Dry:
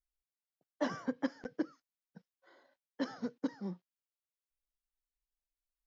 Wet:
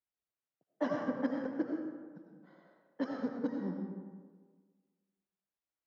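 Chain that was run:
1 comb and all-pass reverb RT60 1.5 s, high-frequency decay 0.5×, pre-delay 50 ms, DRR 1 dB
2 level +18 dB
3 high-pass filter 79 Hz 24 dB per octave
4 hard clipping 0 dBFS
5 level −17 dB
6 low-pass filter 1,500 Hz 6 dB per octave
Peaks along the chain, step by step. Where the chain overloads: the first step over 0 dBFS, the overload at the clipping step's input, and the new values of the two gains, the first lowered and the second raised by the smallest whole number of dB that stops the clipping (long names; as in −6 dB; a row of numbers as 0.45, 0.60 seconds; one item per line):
−21.0, −3.0, −2.5, −2.5, −19.5, −20.5 dBFS
no step passes full scale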